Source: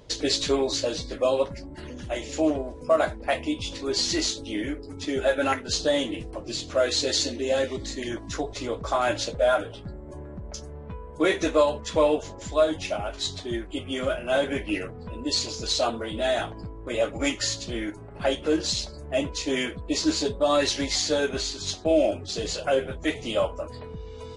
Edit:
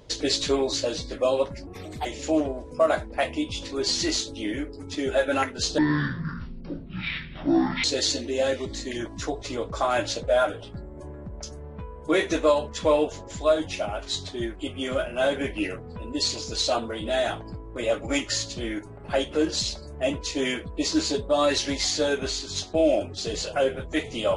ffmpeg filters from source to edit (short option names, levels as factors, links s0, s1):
-filter_complex "[0:a]asplit=5[s0][s1][s2][s3][s4];[s0]atrim=end=1.674[s5];[s1]atrim=start=1.67:end=2.15,asetpts=PTS-STARTPTS,asetrate=55566,aresample=44100[s6];[s2]atrim=start=2.146:end=5.884[s7];[s3]atrim=start=5.88:end=6.95,asetpts=PTS-STARTPTS,asetrate=22932,aresample=44100,atrim=end_sample=90744,asetpts=PTS-STARTPTS[s8];[s4]atrim=start=6.946[s9];[s5][s6]acrossfade=d=0.004:c1=hsin:c2=hsin[s10];[s10][s7]acrossfade=d=0.004:c1=hsin:c2=hsin[s11];[s11][s8]acrossfade=d=0.004:c1=hsin:c2=hsin[s12];[s12][s9]acrossfade=d=0.004:c1=hsin:c2=hsin"